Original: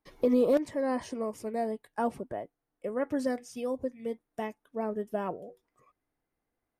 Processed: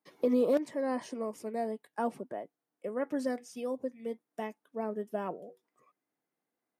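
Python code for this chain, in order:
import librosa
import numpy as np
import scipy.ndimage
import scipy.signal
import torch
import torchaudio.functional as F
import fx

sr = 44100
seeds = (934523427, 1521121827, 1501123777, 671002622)

y = scipy.signal.sosfilt(scipy.signal.butter(4, 160.0, 'highpass', fs=sr, output='sos'), x)
y = y * librosa.db_to_amplitude(-2.5)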